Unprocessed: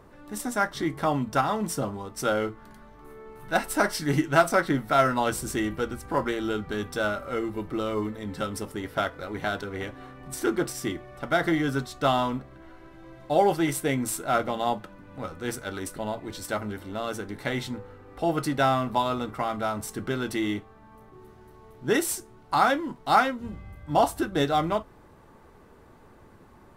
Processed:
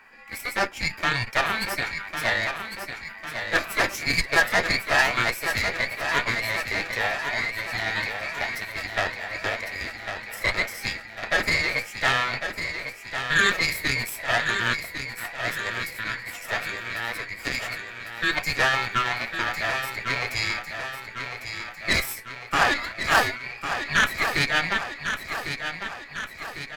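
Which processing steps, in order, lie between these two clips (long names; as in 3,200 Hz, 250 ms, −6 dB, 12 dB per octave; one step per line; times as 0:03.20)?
frequency inversion band by band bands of 2,000 Hz
high-shelf EQ 5,200 Hz −5.5 dB
harmonic generator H 8 −17 dB, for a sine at −6 dBFS
on a send: repeating echo 1,101 ms, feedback 56%, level −8 dB
on the sum: formants moved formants +4 semitones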